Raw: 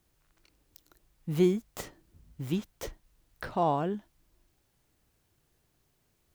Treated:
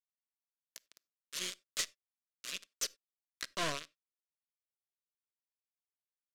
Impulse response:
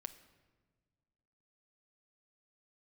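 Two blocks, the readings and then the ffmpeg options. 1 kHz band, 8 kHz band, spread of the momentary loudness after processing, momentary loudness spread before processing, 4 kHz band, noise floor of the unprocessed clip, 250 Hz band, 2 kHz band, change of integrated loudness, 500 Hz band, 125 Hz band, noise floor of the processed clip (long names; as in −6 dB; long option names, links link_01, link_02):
−12.5 dB, +10.0 dB, 20 LU, 17 LU, +8.0 dB, −73 dBFS, −21.5 dB, +3.0 dB, −8.5 dB, −16.5 dB, −21.0 dB, below −85 dBFS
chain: -filter_complex "[0:a]aphaser=in_gain=1:out_gain=1:delay=1.1:decay=0.53:speed=1.1:type=sinusoidal,aderivative,asplit=2[link_01][link_02];[link_02]adelay=16,volume=-14dB[link_03];[link_01][link_03]amix=inputs=2:normalize=0,acrusher=bits=6:mix=0:aa=0.000001,highpass=210,lowpass=4800,aeval=exprs='(tanh(63.1*val(0)+0.65)-tanh(0.65))/63.1':channel_layout=same,asuperstop=centerf=830:order=4:qfactor=2.5,highshelf=frequency=2300:gain=12,asplit=2[link_04][link_05];[1:a]atrim=start_sample=2205,atrim=end_sample=4410[link_06];[link_05][link_06]afir=irnorm=-1:irlink=0,volume=-2dB[link_07];[link_04][link_07]amix=inputs=2:normalize=0,volume=5dB"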